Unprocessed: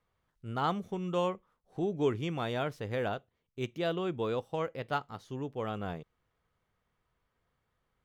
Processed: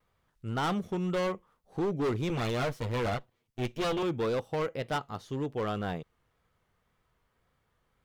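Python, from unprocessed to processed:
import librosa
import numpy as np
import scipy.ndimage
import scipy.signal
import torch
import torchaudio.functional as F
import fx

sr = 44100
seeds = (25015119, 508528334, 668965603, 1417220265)

y = fx.lower_of_two(x, sr, delay_ms=8.4, at=(2.29, 4.03))
y = np.clip(10.0 ** (31.0 / 20.0) * y, -1.0, 1.0) / 10.0 ** (31.0 / 20.0)
y = fx.vibrato(y, sr, rate_hz=1.9, depth_cents=57.0)
y = F.gain(torch.from_numpy(y), 5.0).numpy()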